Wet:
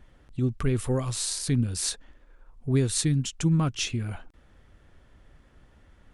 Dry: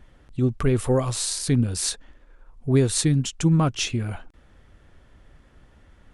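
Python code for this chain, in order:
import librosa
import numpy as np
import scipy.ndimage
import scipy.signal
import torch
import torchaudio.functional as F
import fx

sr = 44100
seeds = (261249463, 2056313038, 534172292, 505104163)

y = fx.dynamic_eq(x, sr, hz=650.0, q=0.78, threshold_db=-37.0, ratio=4.0, max_db=-6)
y = y * 10.0 ** (-3.0 / 20.0)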